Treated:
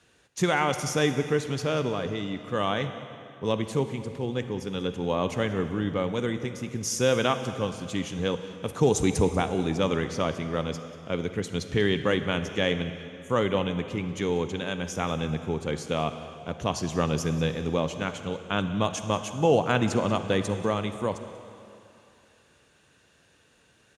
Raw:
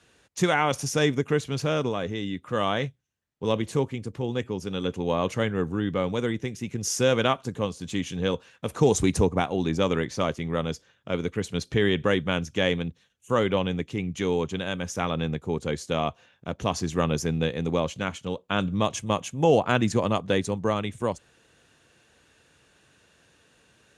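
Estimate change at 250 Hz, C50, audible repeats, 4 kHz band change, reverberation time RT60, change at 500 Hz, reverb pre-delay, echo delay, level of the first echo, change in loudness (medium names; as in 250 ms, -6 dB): -1.0 dB, 9.5 dB, 1, -1.0 dB, 2.8 s, -1.0 dB, 40 ms, 187 ms, -20.0 dB, -1.0 dB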